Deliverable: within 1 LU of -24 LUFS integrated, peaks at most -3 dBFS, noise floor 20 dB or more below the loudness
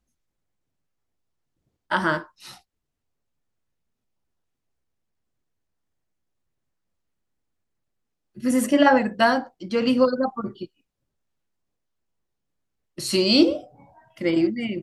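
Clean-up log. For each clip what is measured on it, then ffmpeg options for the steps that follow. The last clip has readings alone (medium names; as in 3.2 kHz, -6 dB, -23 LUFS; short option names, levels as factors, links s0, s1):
loudness -21.5 LUFS; peak level -3.5 dBFS; loudness target -24.0 LUFS
-> -af "volume=0.75"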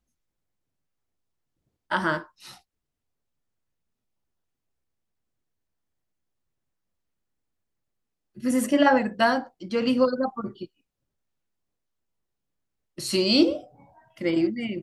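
loudness -24.0 LUFS; peak level -6.0 dBFS; noise floor -82 dBFS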